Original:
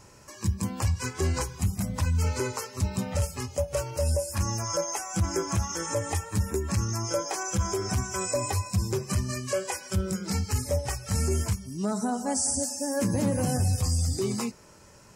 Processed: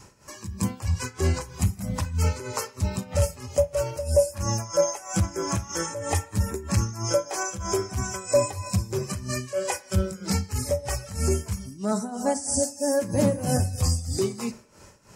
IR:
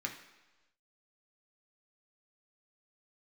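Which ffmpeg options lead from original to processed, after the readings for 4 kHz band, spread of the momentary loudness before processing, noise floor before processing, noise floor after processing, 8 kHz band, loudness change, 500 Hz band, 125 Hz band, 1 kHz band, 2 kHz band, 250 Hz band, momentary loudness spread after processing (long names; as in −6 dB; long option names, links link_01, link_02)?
+1.0 dB, 4 LU, −53 dBFS, −50 dBFS, +0.5 dB, +2.0 dB, +5.5 dB, +0.5 dB, +1.5 dB, +1.0 dB, +1.0 dB, 7 LU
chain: -filter_complex "[0:a]adynamicequalizer=threshold=0.00631:dfrequency=580:dqfactor=6.1:tfrequency=580:tqfactor=6.1:attack=5:release=100:ratio=0.375:range=3.5:mode=boostabove:tftype=bell,tremolo=f=3.1:d=0.82,asplit=2[link_01][link_02];[1:a]atrim=start_sample=2205,adelay=38[link_03];[link_02][link_03]afir=irnorm=-1:irlink=0,volume=-16.5dB[link_04];[link_01][link_04]amix=inputs=2:normalize=0,volume=4.5dB"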